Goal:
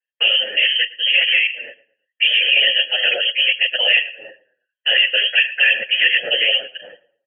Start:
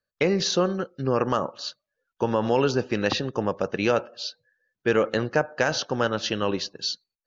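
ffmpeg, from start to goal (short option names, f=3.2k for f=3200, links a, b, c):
-filter_complex "[0:a]asettb=1/sr,asplit=3[a][b][c];[a]atrim=end=1.494[d];[b]atrim=start=1.49:end=2.38,asetpts=PTS-STARTPTS,afade=t=in:d=0.004:c=qsin,afade=t=out:st=0.886:d=0.004:c=qsin,equalizer=f=230:t=o:w=2.9:g=10[e];[c]atrim=start=2.376[f];[d][e]acrossfade=d=0.004:c1=hsin:c2=qsin[g];[g][f]acrossfade=d=0.004:c1=qsin:c2=hsin,agate=range=-15dB:threshold=-44dB:ratio=16:detection=peak,acrossover=split=380|1100[h][i][j];[j]asoftclip=type=hard:threshold=-28.5dB[k];[h][i][k]amix=inputs=3:normalize=0,afftfilt=real='hypot(re,im)*cos(2*PI*random(0))':imag='hypot(re,im)*sin(2*PI*random(1))':win_size=512:overlap=0.75,lowpass=f=2.8k:t=q:w=0.5098,lowpass=f=2.8k:t=q:w=0.6013,lowpass=f=2.8k:t=q:w=0.9,lowpass=f=2.8k:t=q:w=2.563,afreqshift=-3300,apsyclip=27dB,asplit=3[l][m][n];[l]bandpass=f=530:t=q:w=8,volume=0dB[o];[m]bandpass=f=1.84k:t=q:w=8,volume=-6dB[p];[n]bandpass=f=2.48k:t=q:w=8,volume=-9dB[q];[o][p][q]amix=inputs=3:normalize=0,asplit=2[r][s];[s]adelay=112,lowpass=f=2.4k:p=1,volume=-18dB,asplit=2[t][u];[u]adelay=112,lowpass=f=2.4k:p=1,volume=0.31,asplit=2[v][w];[w]adelay=112,lowpass=f=2.4k:p=1,volume=0.31[x];[t][v][x]amix=inputs=3:normalize=0[y];[r][y]amix=inputs=2:normalize=0,asplit=2[z][aa];[aa]adelay=7.9,afreqshift=-1.3[ab];[z][ab]amix=inputs=2:normalize=1,volume=6dB"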